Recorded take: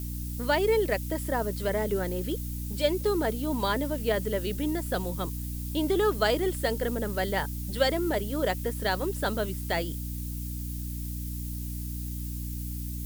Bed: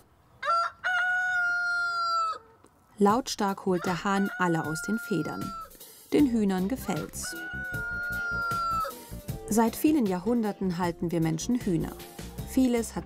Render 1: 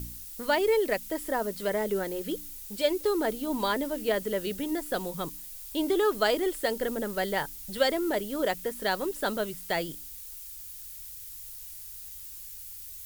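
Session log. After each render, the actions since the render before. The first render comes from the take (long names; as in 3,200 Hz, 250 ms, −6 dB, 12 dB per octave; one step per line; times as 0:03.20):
hum removal 60 Hz, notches 5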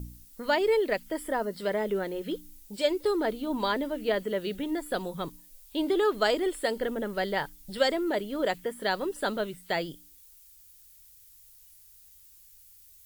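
noise reduction from a noise print 12 dB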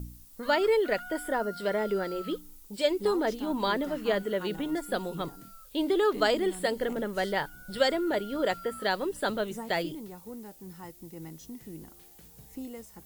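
mix in bed −16.5 dB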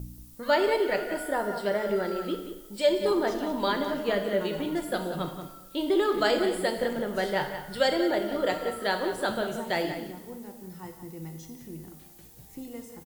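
slap from a distant wall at 31 metres, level −10 dB
coupled-rooms reverb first 0.82 s, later 2.2 s, DRR 5 dB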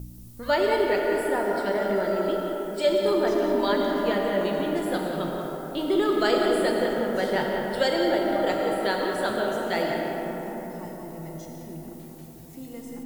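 comb and all-pass reverb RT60 4.8 s, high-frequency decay 0.3×, pre-delay 65 ms, DRR 1.5 dB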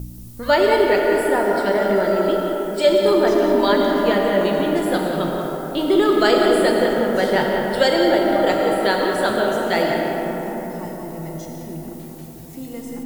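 level +7 dB
brickwall limiter −2 dBFS, peak gain reduction 1 dB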